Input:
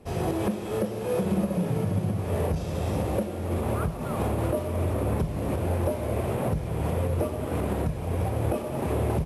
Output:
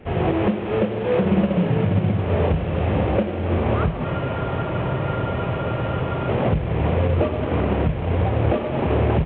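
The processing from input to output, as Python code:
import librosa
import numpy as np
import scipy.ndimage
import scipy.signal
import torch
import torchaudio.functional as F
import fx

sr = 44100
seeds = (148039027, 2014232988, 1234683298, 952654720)

y = fx.cvsd(x, sr, bps=16000)
y = fx.spec_freeze(y, sr, seeds[0], at_s=4.06, hold_s=2.21)
y = y * librosa.db_to_amplitude(7.5)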